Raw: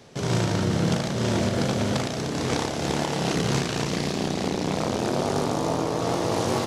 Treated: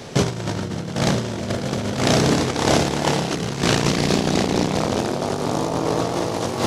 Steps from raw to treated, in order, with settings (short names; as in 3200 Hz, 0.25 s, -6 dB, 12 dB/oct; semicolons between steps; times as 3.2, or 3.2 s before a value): negative-ratio compressor -29 dBFS, ratio -0.5; gain +9 dB